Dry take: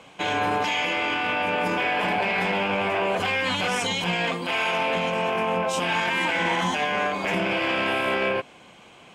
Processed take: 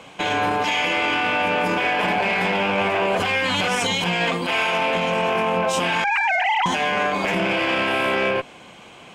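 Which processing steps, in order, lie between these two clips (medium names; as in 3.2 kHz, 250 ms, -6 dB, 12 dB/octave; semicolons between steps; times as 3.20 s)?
6.04–6.66 s: formants replaced by sine waves; peak limiter -18 dBFS, peak gain reduction 4.5 dB; Chebyshev shaper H 4 -29 dB, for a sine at -18 dBFS; trim +5.5 dB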